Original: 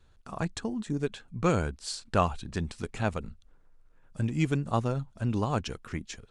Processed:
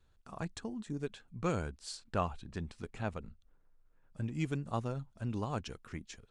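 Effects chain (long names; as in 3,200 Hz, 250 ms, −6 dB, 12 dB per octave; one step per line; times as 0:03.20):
0:01.97–0:04.35: high-shelf EQ 4,800 Hz −7 dB
level −8 dB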